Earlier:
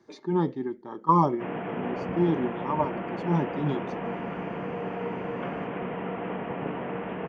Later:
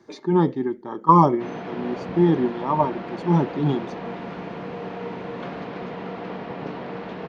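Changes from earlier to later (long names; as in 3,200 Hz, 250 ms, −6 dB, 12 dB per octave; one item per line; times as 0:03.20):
speech +6.5 dB
background: remove Butterworth low-pass 3,100 Hz 72 dB per octave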